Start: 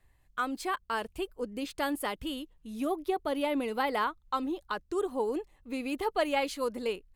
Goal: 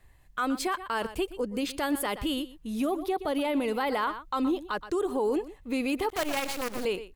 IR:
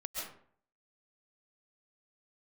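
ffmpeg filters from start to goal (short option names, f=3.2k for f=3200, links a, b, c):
-filter_complex "[0:a]asettb=1/sr,asplit=3[a][b][c];[a]atrim=end=6.094[d];[b]atrim=start=6.09:end=6.85,asetpts=PTS-STARTPTS,afade=t=in:d=0.004:c=qsin,afade=t=out:st=0.756:d=0.004:c=qsin,acrusher=bits=5:dc=4:mix=0:aa=0.000001[e];[c]atrim=start=6.846[f];[d][e]acrossfade=d=0.004:c1=hsin:c2=qsin[g];[g][f]acrossfade=d=0.004:c1=qsin:c2=hsin,aecho=1:1:121:0.126,alimiter=level_in=4dB:limit=-24dB:level=0:latency=1:release=47,volume=-4dB,volume=7.5dB"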